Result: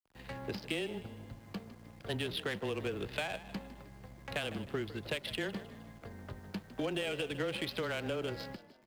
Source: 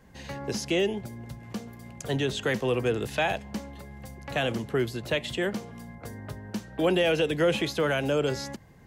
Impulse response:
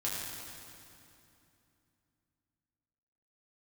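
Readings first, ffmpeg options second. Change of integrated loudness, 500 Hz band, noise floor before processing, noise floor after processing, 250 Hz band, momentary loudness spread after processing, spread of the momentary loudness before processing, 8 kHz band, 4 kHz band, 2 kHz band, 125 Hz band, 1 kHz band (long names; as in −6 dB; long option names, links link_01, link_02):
−10.5 dB, −11.5 dB, −51 dBFS, −57 dBFS, −10.0 dB, 14 LU, 17 LU, −11.5 dB, −7.0 dB, −8.5 dB, −10.0 dB, −10.5 dB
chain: -filter_complex "[0:a]highshelf=frequency=2400:gain=9.5,acompressor=threshold=-26dB:ratio=10,aresample=11025,aeval=exprs='sgn(val(0))*max(abs(val(0))-0.00335,0)':channel_layout=same,aresample=44100,adynamicsmooth=sensitivity=6.5:basefreq=1400,acrusher=bits=9:mix=0:aa=0.000001,afreqshift=-14,asplit=5[link_01][link_02][link_03][link_04][link_05];[link_02]adelay=155,afreqshift=45,volume=-15dB[link_06];[link_03]adelay=310,afreqshift=90,volume=-22.5dB[link_07];[link_04]adelay=465,afreqshift=135,volume=-30.1dB[link_08];[link_05]adelay=620,afreqshift=180,volume=-37.6dB[link_09];[link_01][link_06][link_07][link_08][link_09]amix=inputs=5:normalize=0,volume=-5.5dB"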